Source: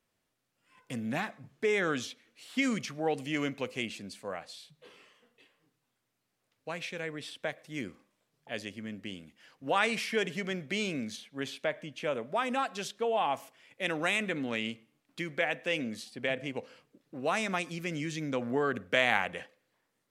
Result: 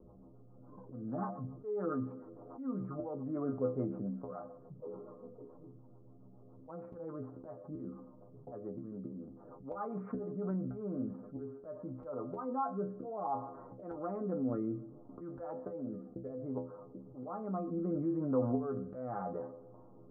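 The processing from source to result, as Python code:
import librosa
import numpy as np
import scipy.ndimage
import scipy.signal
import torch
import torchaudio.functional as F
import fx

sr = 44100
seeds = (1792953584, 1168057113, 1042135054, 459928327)

y = scipy.signal.sosfilt(scipy.signal.cheby1(6, 1.0, 1300.0, 'lowpass', fs=sr, output='sos'), x)
y = fx.env_lowpass(y, sr, base_hz=520.0, full_db=-30.0)
y = fx.auto_swell(y, sr, attack_ms=614.0)
y = fx.stiff_resonator(y, sr, f0_hz=61.0, decay_s=0.31, stiffness=0.008)
y = fx.rotary_switch(y, sr, hz=7.0, then_hz=0.65, switch_at_s=10.02)
y = fx.env_flatten(y, sr, amount_pct=50)
y = y * 10.0 ** (6.5 / 20.0)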